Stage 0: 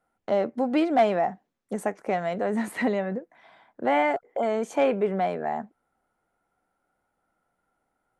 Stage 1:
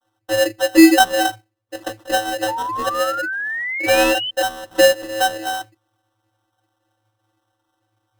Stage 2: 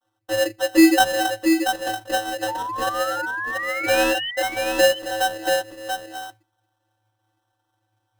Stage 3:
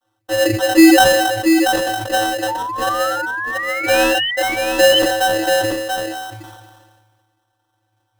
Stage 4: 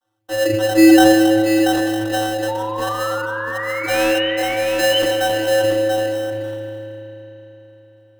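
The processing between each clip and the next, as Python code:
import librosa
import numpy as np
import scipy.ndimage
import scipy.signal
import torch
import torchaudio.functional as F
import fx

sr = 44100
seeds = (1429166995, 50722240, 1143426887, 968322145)

y1 = fx.vocoder(x, sr, bands=32, carrier='square', carrier_hz=108.0)
y1 = fx.sample_hold(y1, sr, seeds[0], rate_hz=2300.0, jitter_pct=0)
y1 = fx.spec_paint(y1, sr, seeds[1], shape='rise', start_s=2.48, length_s=1.83, low_hz=870.0, high_hz=3100.0, level_db=-33.0)
y1 = y1 * 10.0 ** (8.5 / 20.0)
y2 = y1 + 10.0 ** (-5.5 / 20.0) * np.pad(y1, (int(684 * sr / 1000.0), 0))[:len(y1)]
y2 = y2 * 10.0 ** (-4.0 / 20.0)
y3 = fx.sustainer(y2, sr, db_per_s=35.0)
y3 = y3 * 10.0 ** (4.0 / 20.0)
y4 = fx.rev_spring(y3, sr, rt60_s=3.9, pass_ms=(37,), chirp_ms=70, drr_db=4.5)
y4 = y4 * 10.0 ** (-4.5 / 20.0)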